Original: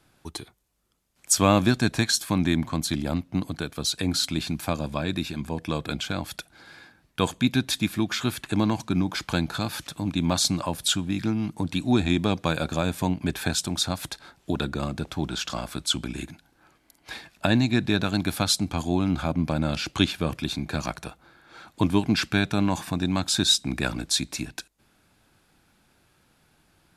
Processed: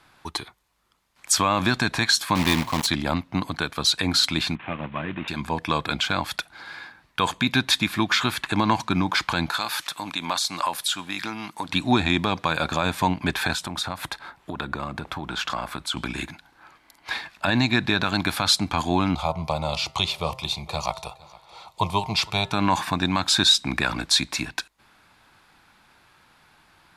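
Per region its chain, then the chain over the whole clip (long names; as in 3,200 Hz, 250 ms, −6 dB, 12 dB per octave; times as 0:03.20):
0:02.35–0:02.88: one scale factor per block 3 bits + parametric band 1,400 Hz −7 dB 0.8 octaves
0:04.55–0:05.28: variable-slope delta modulation 16 kbit/s + high-pass filter 110 Hz + parametric band 980 Hz −7.5 dB 2.9 octaves
0:09.50–0:11.69: high-pass filter 680 Hz 6 dB per octave + high-shelf EQ 8,900 Hz +9 dB + downward compressor 3 to 1, threshold −29 dBFS
0:13.53–0:15.97: parametric band 5,200 Hz −7 dB 1.8 octaves + downward compressor, threshold −29 dBFS
0:19.15–0:22.52: phaser with its sweep stopped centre 660 Hz, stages 4 + hum removal 131.2 Hz, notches 16 + single-tap delay 462 ms −22 dB
whole clip: octave-band graphic EQ 1,000/2,000/4,000 Hz +11/+7/+6 dB; brickwall limiter −8 dBFS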